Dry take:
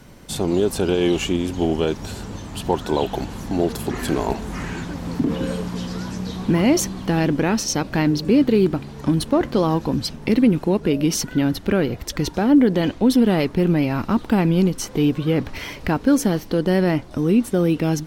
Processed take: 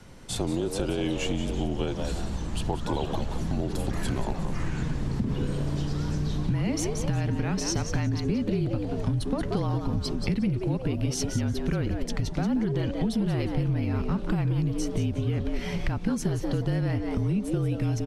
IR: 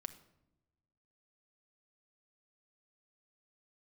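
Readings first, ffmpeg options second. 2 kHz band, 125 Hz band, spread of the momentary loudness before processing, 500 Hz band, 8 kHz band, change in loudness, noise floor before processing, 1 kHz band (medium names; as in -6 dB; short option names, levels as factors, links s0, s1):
-9.0 dB, -2.0 dB, 11 LU, -11.0 dB, -7.5 dB, -8.0 dB, -38 dBFS, -10.0 dB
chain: -filter_complex "[0:a]lowpass=f=11000:w=0.5412,lowpass=f=11000:w=1.3066,asubboost=boost=5:cutoff=150,afreqshift=-36,asplit=2[s0][s1];[s1]asplit=4[s2][s3][s4][s5];[s2]adelay=180,afreqshift=150,volume=0.335[s6];[s3]adelay=360,afreqshift=300,volume=0.114[s7];[s4]adelay=540,afreqshift=450,volume=0.0389[s8];[s5]adelay=720,afreqshift=600,volume=0.0132[s9];[s6][s7][s8][s9]amix=inputs=4:normalize=0[s10];[s0][s10]amix=inputs=2:normalize=0,acompressor=threshold=0.1:ratio=6,volume=0.668"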